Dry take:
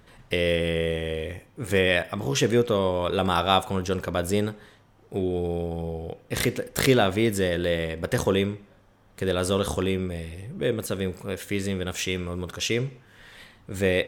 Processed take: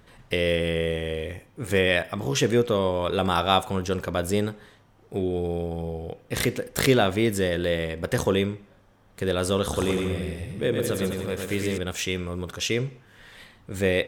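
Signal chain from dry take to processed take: 9.62–11.78 bouncing-ball echo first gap 0.11 s, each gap 0.8×, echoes 5

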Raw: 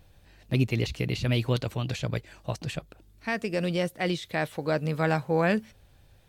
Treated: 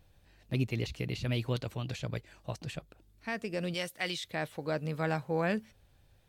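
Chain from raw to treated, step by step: 3.74–4.24 tilt shelf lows -7.5 dB; gain -6.5 dB

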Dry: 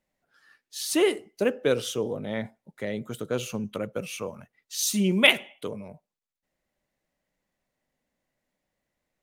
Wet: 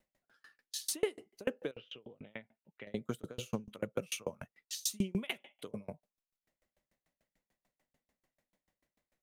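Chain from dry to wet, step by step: compressor 3:1, threshold -34 dBFS, peak gain reduction 16.5 dB; 1.71–2.87 ladder low-pass 3000 Hz, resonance 70%; dB-ramp tremolo decaying 6.8 Hz, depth 34 dB; gain +6 dB

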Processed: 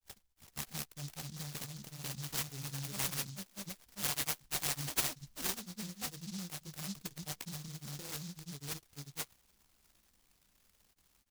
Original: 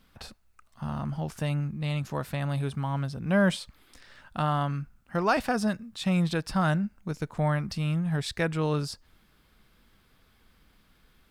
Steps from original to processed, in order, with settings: high shelf 2300 Hz +10 dB; limiter -22 dBFS, peak gain reduction 12.5 dB; vocal rider 0.5 s; grains 0.1 s, spray 0.591 s; vocal tract filter a; fixed phaser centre 2500 Hz, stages 6; doubler 15 ms -13.5 dB; noise-modulated delay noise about 5100 Hz, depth 0.35 ms; gain +16.5 dB

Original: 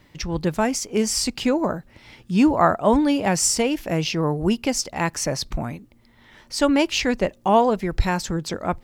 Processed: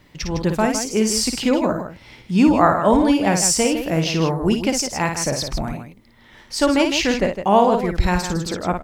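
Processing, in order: loudspeakers at several distances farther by 19 m -6 dB, 54 m -9 dB; gain +1.5 dB

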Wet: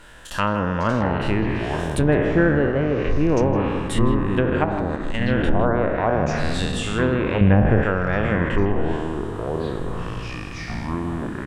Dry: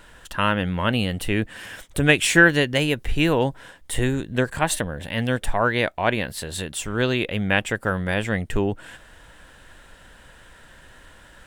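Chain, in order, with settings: spectral trails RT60 1.41 s; treble ducked by the level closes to 760 Hz, closed at -14 dBFS; 4.64–5.22 level quantiser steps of 13 dB; 7.41–7.83 RIAA curve playback; echoes that change speed 0.427 s, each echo -7 st, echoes 3, each echo -6 dB; speakerphone echo 0.16 s, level -10 dB

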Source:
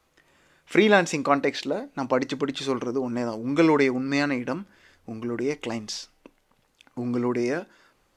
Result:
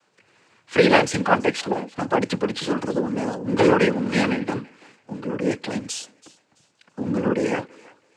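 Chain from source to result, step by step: noise vocoder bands 8; thinning echo 0.332 s, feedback 31%, high-pass 600 Hz, level -21 dB; 2.3–2.95 three-band squash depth 40%; gain +3 dB

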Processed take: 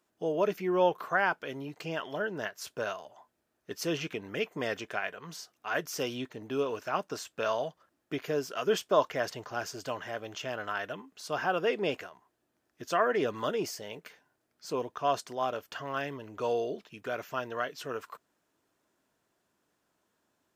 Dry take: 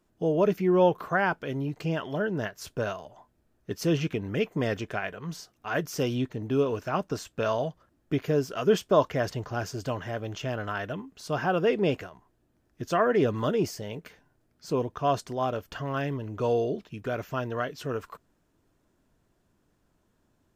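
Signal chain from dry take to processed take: HPF 650 Hz 6 dB/oct

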